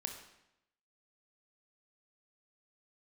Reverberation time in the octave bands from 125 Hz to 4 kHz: 0.90, 0.90, 0.85, 0.85, 0.80, 0.75 seconds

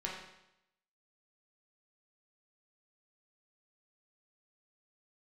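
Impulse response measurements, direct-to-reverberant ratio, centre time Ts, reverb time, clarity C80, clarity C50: −3.5 dB, 50 ms, 0.85 s, 5.0 dB, 2.5 dB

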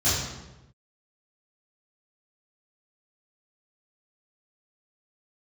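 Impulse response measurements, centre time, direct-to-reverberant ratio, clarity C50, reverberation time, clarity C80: 74 ms, −14.5 dB, 0.0 dB, 1.0 s, 3.0 dB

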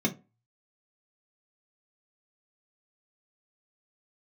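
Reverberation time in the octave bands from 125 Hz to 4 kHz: 0.45, 0.30, 0.30, 0.30, 0.20, 0.15 seconds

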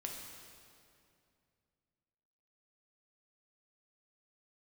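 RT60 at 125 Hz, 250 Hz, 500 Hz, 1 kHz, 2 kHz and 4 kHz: 3.2, 2.9, 2.6, 2.4, 2.2, 2.0 seconds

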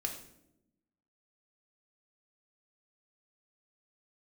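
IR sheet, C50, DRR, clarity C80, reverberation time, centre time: 7.5 dB, 2.5 dB, 10.5 dB, 0.85 s, 21 ms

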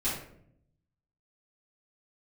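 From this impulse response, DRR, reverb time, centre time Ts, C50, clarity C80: −11.5 dB, 0.65 s, 47 ms, 2.5 dB, 6.5 dB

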